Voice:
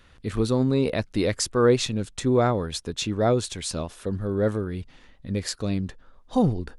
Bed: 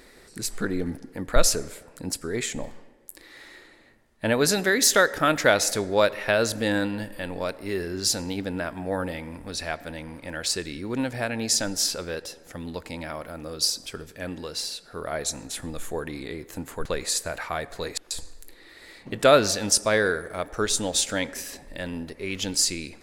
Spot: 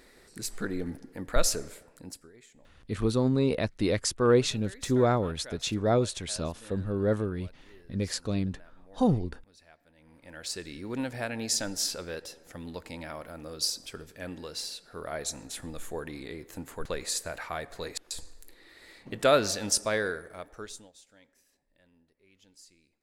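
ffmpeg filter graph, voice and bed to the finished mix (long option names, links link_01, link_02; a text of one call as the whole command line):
ffmpeg -i stem1.wav -i stem2.wav -filter_complex "[0:a]adelay=2650,volume=-3dB[link_01];[1:a]volume=16dB,afade=type=out:start_time=1.72:duration=0.61:silence=0.0841395,afade=type=in:start_time=9.95:duration=0.93:silence=0.0841395,afade=type=out:start_time=19.79:duration=1.13:silence=0.0446684[link_02];[link_01][link_02]amix=inputs=2:normalize=0" out.wav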